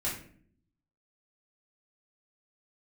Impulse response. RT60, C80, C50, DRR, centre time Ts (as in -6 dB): 0.55 s, 10.0 dB, 5.5 dB, -7.5 dB, 34 ms